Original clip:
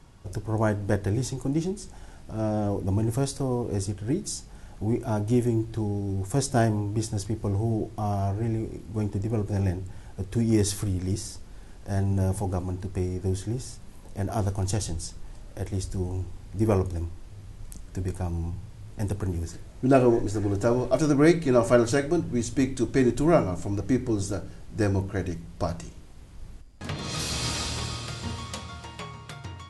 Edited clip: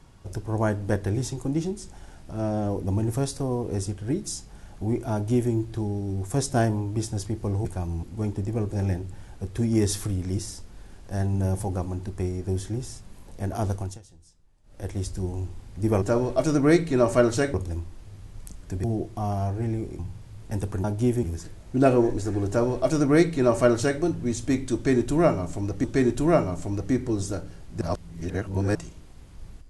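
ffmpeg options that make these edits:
ffmpeg -i in.wav -filter_complex "[0:a]asplit=14[link_01][link_02][link_03][link_04][link_05][link_06][link_07][link_08][link_09][link_10][link_11][link_12][link_13][link_14];[link_01]atrim=end=7.652[link_15];[link_02]atrim=start=18.088:end=18.472[link_16];[link_03]atrim=start=8.798:end=14.76,asetpts=PTS-STARTPTS,afade=type=out:start_time=5.722:duration=0.24:silence=0.0841395[link_17];[link_04]atrim=start=14.76:end=15.4,asetpts=PTS-STARTPTS,volume=-21.5dB[link_18];[link_05]atrim=start=15.4:end=16.792,asetpts=PTS-STARTPTS,afade=type=in:duration=0.24:silence=0.0841395[link_19];[link_06]atrim=start=20.568:end=22.092[link_20];[link_07]atrim=start=16.788:end=18.092[link_21];[link_08]atrim=start=7.648:end=8.802[link_22];[link_09]atrim=start=18.468:end=19.322[link_23];[link_10]atrim=start=5.128:end=5.522[link_24];[link_11]atrim=start=19.318:end=23.932[link_25];[link_12]atrim=start=22.838:end=24.812[link_26];[link_13]atrim=start=24.808:end=25.752,asetpts=PTS-STARTPTS,areverse[link_27];[link_14]atrim=start=25.748[link_28];[link_15][link_16]acrossfade=duration=0.004:curve1=hsin:curve2=hsin[link_29];[link_17][link_18][link_19]concat=n=3:v=0:a=1[link_30];[link_29][link_30]acrossfade=duration=0.004:curve1=hsin:curve2=hsin[link_31];[link_31][link_20]acrossfade=duration=0.004:curve1=hsin:curve2=hsin[link_32];[link_32][link_21]acrossfade=duration=0.004:curve1=hsin:curve2=hsin[link_33];[link_33][link_22]acrossfade=duration=0.004:curve1=hsin:curve2=hsin[link_34];[link_34][link_23]acrossfade=duration=0.004:curve1=hsin:curve2=hsin[link_35];[link_35][link_24]acrossfade=duration=0.004:curve1=hsin:curve2=hsin[link_36];[link_36][link_25]acrossfade=duration=0.004:curve1=hsin:curve2=hsin[link_37];[link_37][link_26]acrossfade=duration=0.004:curve1=hsin:curve2=hsin[link_38];[link_38][link_27]acrossfade=duration=0.004:curve1=hsin:curve2=hsin[link_39];[link_39][link_28]acrossfade=duration=0.004:curve1=hsin:curve2=hsin" out.wav

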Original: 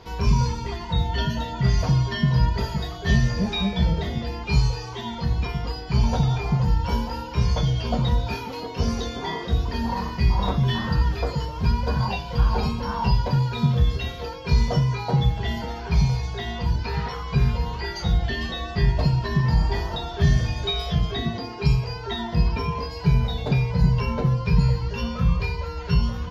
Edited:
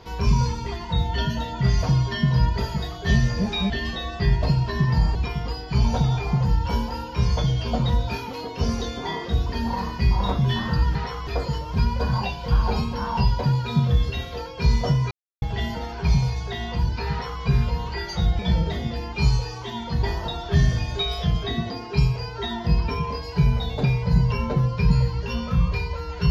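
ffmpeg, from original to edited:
ffmpeg -i in.wav -filter_complex "[0:a]asplit=9[link_01][link_02][link_03][link_04][link_05][link_06][link_07][link_08][link_09];[link_01]atrim=end=3.702[link_10];[link_02]atrim=start=18.258:end=19.712[link_11];[link_03]atrim=start=5.338:end=11.142[link_12];[link_04]atrim=start=16.968:end=17.292[link_13];[link_05]atrim=start=11.138:end=14.98,asetpts=PTS-STARTPTS,afade=type=out:start_time=3.838:duration=0.004:curve=hsin[link_14];[link_06]atrim=start=14.98:end=15.29,asetpts=PTS-STARTPTS,volume=0[link_15];[link_07]atrim=start=15.29:end=18.262,asetpts=PTS-STARTPTS,afade=type=in:duration=0.004:curve=hsin[link_16];[link_08]atrim=start=3.698:end=5.342[link_17];[link_09]atrim=start=19.708[link_18];[link_10][link_11]acrossfade=duration=0.004:curve1=hsin:curve2=hsin[link_19];[link_19][link_12]acrossfade=duration=0.004:curve1=hsin:curve2=hsin[link_20];[link_20][link_13]acrossfade=duration=0.004:curve1=hsin:curve2=hsin[link_21];[link_14][link_15][link_16]concat=n=3:v=0:a=1[link_22];[link_21][link_22]acrossfade=duration=0.004:curve1=hsin:curve2=hsin[link_23];[link_23][link_17]acrossfade=duration=0.004:curve1=hsin:curve2=hsin[link_24];[link_24][link_18]acrossfade=duration=0.004:curve1=hsin:curve2=hsin" out.wav

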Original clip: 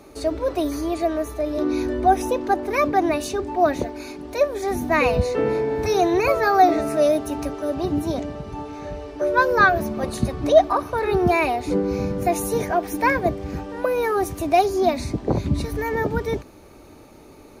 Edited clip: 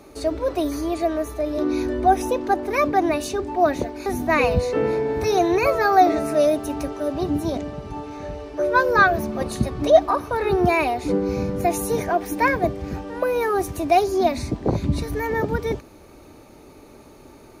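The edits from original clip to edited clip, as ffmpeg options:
ffmpeg -i in.wav -filter_complex "[0:a]asplit=2[link_01][link_02];[link_01]atrim=end=4.062[link_03];[link_02]atrim=start=4.678[link_04];[link_03][link_04]acrossfade=duration=0.004:curve1=hsin:curve2=hsin" out.wav

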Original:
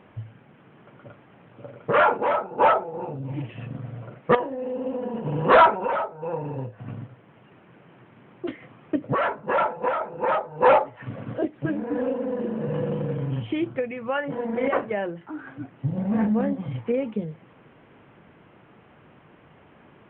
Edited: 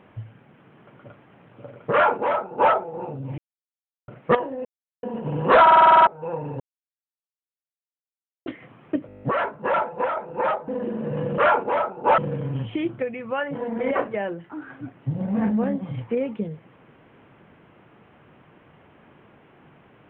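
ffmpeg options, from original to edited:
ffmpeg -i in.wav -filter_complex "[0:a]asplit=27[link_01][link_02][link_03][link_04][link_05][link_06][link_07][link_08][link_09][link_10][link_11][link_12][link_13][link_14][link_15][link_16][link_17][link_18][link_19][link_20][link_21][link_22][link_23][link_24][link_25][link_26][link_27];[link_01]atrim=end=3.38,asetpts=PTS-STARTPTS,afade=type=out:start_time=3.376:duration=0.004:curve=hsin[link_28];[link_02]atrim=start=3.38:end=4.08,asetpts=PTS-STARTPTS,volume=0[link_29];[link_03]atrim=start=4.08:end=4.65,asetpts=PTS-STARTPTS,afade=type=in:duration=0.004:curve=hsin,afade=type=out:start_time=0.566:duration=0.004:curve=hsin[link_30];[link_04]atrim=start=4.65:end=5.03,asetpts=PTS-STARTPTS,volume=0[link_31];[link_05]atrim=start=5.03:end=5.672,asetpts=PTS-STARTPTS,afade=type=in:duration=0.004:curve=hsin[link_32];[link_06]atrim=start=5.618:end=5.672[link_33];[link_07]atrim=start=5.618:end=5.672[link_34];[link_08]atrim=start=5.618:end=5.672[link_35];[link_09]atrim=start=5.618:end=5.672[link_36];[link_10]atrim=start=5.618:end=5.672[link_37];[link_11]atrim=start=5.618:end=5.672[link_38];[link_12]atrim=start=5.618:end=5.672[link_39];[link_13]atrim=start=5.618:end=5.672[link_40];[link_14]atrim=start=6.068:end=6.6,asetpts=PTS-STARTPTS,afade=type=out:start_time=0.528:duration=0.004:curve=hsin[link_41];[link_15]atrim=start=6.6:end=8.46,asetpts=PTS-STARTPTS,volume=0[link_42];[link_16]atrim=start=8.46:end=9.092,asetpts=PTS-STARTPTS,afade=type=in:duration=0.004:curve=hsin[link_43];[link_17]atrim=start=9.068:end=9.092[link_44];[link_18]atrim=start=9.068:end=9.092[link_45];[link_19]atrim=start=9.068:end=9.092[link_46];[link_20]atrim=start=9.068:end=9.092[link_47];[link_21]atrim=start=9.068:end=9.092[link_48];[link_22]atrim=start=9.068:end=9.092[link_49];[link_23]atrim=start=9.068:end=9.092[link_50];[link_24]atrim=start=9.068:end=10.522[link_51];[link_25]atrim=start=12.248:end=12.952[link_52];[link_26]atrim=start=1.918:end=2.722[link_53];[link_27]atrim=start=12.948[link_54];[link_28][link_29][link_30][link_31][link_32]concat=n=5:v=0:a=1[link_55];[link_55][link_33]acrossfade=duration=0.004:curve1=hsin:curve2=hsin[link_56];[link_56][link_34]acrossfade=duration=0.004:curve1=hsin:curve2=hsin[link_57];[link_57][link_35]acrossfade=duration=0.004:curve1=hsin:curve2=hsin[link_58];[link_58][link_36]acrossfade=duration=0.004:curve1=hsin:curve2=hsin[link_59];[link_59][link_37]acrossfade=duration=0.004:curve1=hsin:curve2=hsin[link_60];[link_60][link_38]acrossfade=duration=0.004:curve1=hsin:curve2=hsin[link_61];[link_61][link_39]acrossfade=duration=0.004:curve1=hsin:curve2=hsin[link_62];[link_62][link_40]acrossfade=duration=0.004:curve1=hsin:curve2=hsin[link_63];[link_41][link_42][link_43]concat=n=3:v=0:a=1[link_64];[link_63][link_64]acrossfade=duration=0.004:curve1=hsin:curve2=hsin[link_65];[link_65][link_44]acrossfade=duration=0.004:curve1=hsin:curve2=hsin[link_66];[link_66][link_45]acrossfade=duration=0.004:curve1=hsin:curve2=hsin[link_67];[link_67][link_46]acrossfade=duration=0.004:curve1=hsin:curve2=hsin[link_68];[link_68][link_47]acrossfade=duration=0.004:curve1=hsin:curve2=hsin[link_69];[link_69][link_48]acrossfade=duration=0.004:curve1=hsin:curve2=hsin[link_70];[link_70][link_49]acrossfade=duration=0.004:curve1=hsin:curve2=hsin[link_71];[link_71][link_50]acrossfade=duration=0.004:curve1=hsin:curve2=hsin[link_72];[link_72][link_51]acrossfade=duration=0.004:curve1=hsin:curve2=hsin[link_73];[link_73][link_52]acrossfade=duration=0.004:curve1=hsin:curve2=hsin[link_74];[link_74][link_53]acrossfade=duration=0.004:curve1=hsin:curve2=hsin[link_75];[link_75][link_54]acrossfade=duration=0.004:curve1=hsin:curve2=hsin" out.wav

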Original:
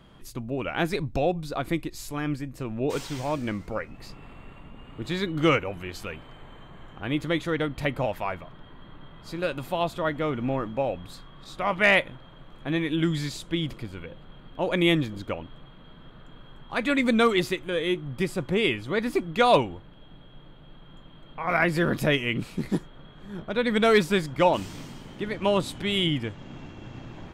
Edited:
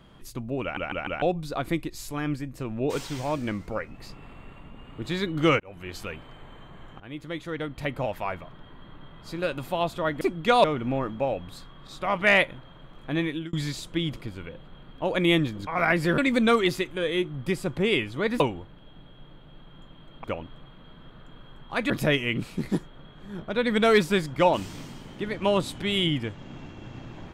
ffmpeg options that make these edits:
ffmpeg -i in.wav -filter_complex "[0:a]asplit=15[link_01][link_02][link_03][link_04][link_05][link_06][link_07][link_08][link_09][link_10][link_11][link_12][link_13][link_14][link_15];[link_01]atrim=end=0.772[link_16];[link_02]atrim=start=0.618:end=0.772[link_17];[link_03]atrim=start=0.618:end=0.772[link_18];[link_04]atrim=start=0.618:end=0.772[link_19];[link_05]atrim=start=1.218:end=5.6,asetpts=PTS-STARTPTS,afade=type=out:start_time=4.378:duration=0.004:curve=hsin[link_20];[link_06]atrim=start=5.6:end=7,asetpts=PTS-STARTPTS,afade=type=in:duration=0.33,afade=type=out:start_time=1.396:duration=0.004:curve=hsin:silence=0.199526[link_21];[link_07]atrim=start=7:end=10.212,asetpts=PTS-STARTPTS,afade=type=in:duration=1.38:silence=0.199526[link_22];[link_08]atrim=start=19.118:end=19.552[link_23];[link_09]atrim=start=10.208:end=13.1,asetpts=PTS-STARTPTS,afade=type=out:start_time=2.602:duration=0.29[link_24];[link_10]atrim=start=13.1:end=15.242,asetpts=PTS-STARTPTS,afade=type=in:duration=0.004:curve=hsin[link_25];[link_11]atrim=start=21.388:end=21.902[link_26];[link_12]atrim=start=16.898:end=19.122[link_27];[link_13]atrim=start=19.548:end=21.392[link_28];[link_14]atrim=start=15.238:end=16.902[link_29];[link_15]atrim=start=21.898[link_30];[link_16][link_17]acrossfade=duration=0.004:curve1=hsin:curve2=hsin[link_31];[link_31][link_18]acrossfade=duration=0.004:curve1=hsin:curve2=hsin[link_32];[link_32][link_19]acrossfade=duration=0.004:curve1=hsin:curve2=hsin[link_33];[link_20][link_21][link_22]concat=n=3:v=0:a=1[link_34];[link_33][link_34]acrossfade=duration=0.004:curve1=hsin:curve2=hsin[link_35];[link_35][link_23]acrossfade=duration=0.004:curve1=hsin:curve2=hsin[link_36];[link_24][link_25]concat=n=2:v=0:a=1[link_37];[link_36][link_37]acrossfade=duration=0.004:curve1=hsin:curve2=hsin[link_38];[link_38][link_26]acrossfade=duration=0.004:curve1=hsin:curve2=hsin[link_39];[link_39][link_27]acrossfade=duration=0.004:curve1=hsin:curve2=hsin[link_40];[link_40][link_28]acrossfade=duration=0.004:curve1=hsin:curve2=hsin[link_41];[link_41][link_29]acrossfade=duration=0.004:curve1=hsin:curve2=hsin[link_42];[link_42][link_30]acrossfade=duration=0.004:curve1=hsin:curve2=hsin" out.wav

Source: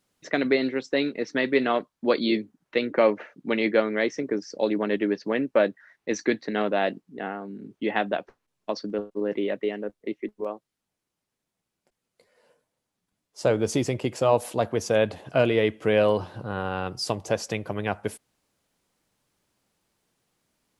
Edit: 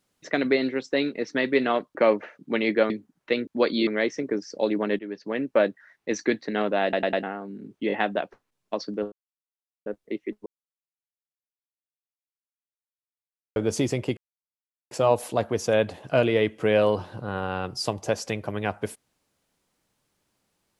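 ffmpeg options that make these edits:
ffmpeg -i in.wav -filter_complex "[0:a]asplit=17[link_01][link_02][link_03][link_04][link_05][link_06][link_07][link_08][link_09][link_10][link_11][link_12][link_13][link_14][link_15][link_16][link_17];[link_01]atrim=end=1.952[link_18];[link_02]atrim=start=2.918:end=3.872[link_19];[link_03]atrim=start=2.348:end=2.922[link_20];[link_04]atrim=start=1.948:end=2.352[link_21];[link_05]atrim=start=3.868:end=4.99,asetpts=PTS-STARTPTS,afade=type=out:start_time=1.118:duration=0.004:curve=hsin:silence=0.16788[link_22];[link_06]atrim=start=4.99:end=6.932,asetpts=PTS-STARTPTS,afade=type=in:duration=0.55:silence=0.16788[link_23];[link_07]atrim=start=6.828:end=6.932[link_24];[link_08]atrim=start=6.828:end=6.932[link_25];[link_09]atrim=start=6.828:end=6.932[link_26];[link_10]atrim=start=7.228:end=7.902[link_27];[link_11]atrim=start=7.878:end=7.902[link_28];[link_12]atrim=start=7.878:end=9.08,asetpts=PTS-STARTPTS,afade=type=out:start_time=1.198:duration=0.004:curve=hsin[link_29];[link_13]atrim=start=9.08:end=9.82,asetpts=PTS-STARTPTS,volume=0[link_30];[link_14]atrim=start=9.82:end=10.42,asetpts=PTS-STARTPTS,afade=type=in:duration=0.004:curve=hsin,afade=type=out:start_time=0.596:duration=0.004:curve=hsin[link_31];[link_15]atrim=start=10.42:end=13.52,asetpts=PTS-STARTPTS,volume=0[link_32];[link_16]atrim=start=13.52:end=14.13,asetpts=PTS-STARTPTS,afade=type=in:duration=0.004:curve=hsin,afade=type=out:start_time=0.606:duration=0.004:curve=hsin,apad=pad_dur=0.74[link_33];[link_17]atrim=start=14.13,asetpts=PTS-STARTPTS,afade=type=in:duration=0.004:curve=hsin[link_34];[link_18][link_19]acrossfade=duration=0.004:curve1=hsin:curve2=hsin[link_35];[link_35][link_20]acrossfade=duration=0.004:curve1=hsin:curve2=hsin[link_36];[link_36][link_21]acrossfade=duration=0.004:curve1=hsin:curve2=hsin[link_37];[link_22][link_23]concat=n=2:v=0:a=1[link_38];[link_37][link_38]acrossfade=duration=0.004:curve1=hsin:curve2=hsin[link_39];[link_39][link_24]acrossfade=duration=0.004:curve1=hsin:curve2=hsin[link_40];[link_40][link_25]acrossfade=duration=0.004:curve1=hsin:curve2=hsin[link_41];[link_41][link_26]acrossfade=duration=0.004:curve1=hsin:curve2=hsin[link_42];[link_42][link_27]acrossfade=duration=0.004:curve1=hsin:curve2=hsin[link_43];[link_43][link_28]acrossfade=duration=0.004:curve1=hsin:curve2=hsin[link_44];[link_29][link_30][link_31][link_32][link_33][link_34]concat=n=6:v=0:a=1[link_45];[link_44][link_45]acrossfade=duration=0.004:curve1=hsin:curve2=hsin" out.wav

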